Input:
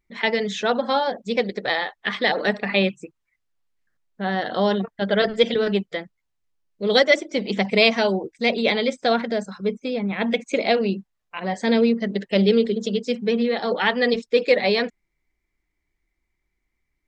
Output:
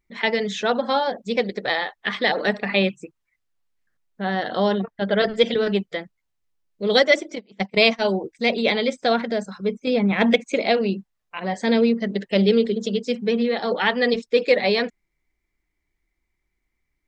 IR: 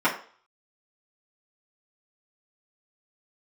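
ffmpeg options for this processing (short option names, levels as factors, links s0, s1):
-filter_complex "[0:a]asettb=1/sr,asplit=3[s0][s1][s2];[s0]atrim=end=4.684[s3];[s1]atrim=start=4.68:end=5.21,asetpts=PTS-STARTPTS,afade=t=in:d=0.004:c=qsin,afade=t=out:st=0.526:d=0.004:c=qsin,highshelf=f=3900:g=-5.5[s4];[s2]atrim=start=5.206[s5];[s3][s4]acrossfade=d=0.004:c1=hsin:c2=qsin[s6];[s6][s5]acrossfade=d=0.004:c1=qsin:c2=hsin,asplit=3[s7][s8][s9];[s7]afade=t=out:st=7.34:d=0.02[s10];[s8]agate=range=0.0447:threshold=0.112:ratio=16:detection=peak,afade=t=in:st=7.34:d=0.02,afade=t=out:st=8.04:d=0.02[s11];[s9]afade=t=in:st=8.04:d=0.02[s12];[s10][s11][s12]amix=inputs=3:normalize=0,asettb=1/sr,asplit=3[s13][s14][s15];[s13]atrim=end=9.874[s16];[s14]atrim=start=9.87:end=10.36,asetpts=PTS-STARTPTS,afade=t=in:d=0.004:c=qsin,afade=t=out:st=0.486:d=0.004:c=qsin,acontrast=38[s17];[s15]atrim=start=10.356[s18];[s16][s17]acrossfade=d=0.004:c1=hsin:c2=qsin[s19];[s19][s18]acrossfade=d=0.004:c1=qsin:c2=hsin"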